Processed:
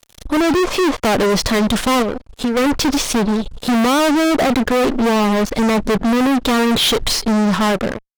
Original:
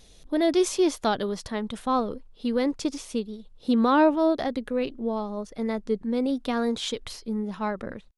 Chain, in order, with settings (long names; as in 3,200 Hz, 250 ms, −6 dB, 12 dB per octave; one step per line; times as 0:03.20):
fade-out on the ending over 0.68 s
0:02.02–0:02.57: downward compressor 12 to 1, threshold −40 dBFS, peak gain reduction 17 dB
treble cut that deepens with the level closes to 1,100 Hz, closed at −18.5 dBFS
automatic gain control gain up to 3.5 dB
fuzz pedal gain 38 dB, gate −46 dBFS